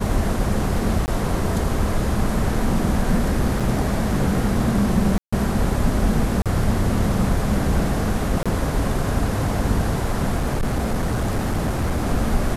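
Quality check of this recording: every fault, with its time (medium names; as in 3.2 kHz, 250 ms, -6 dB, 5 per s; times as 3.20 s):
1.06–1.08 s: dropout 19 ms
3.60–3.61 s: dropout 5.3 ms
5.18–5.33 s: dropout 145 ms
6.42–6.46 s: dropout 37 ms
8.43–8.46 s: dropout 26 ms
10.36–12.07 s: clipped -17 dBFS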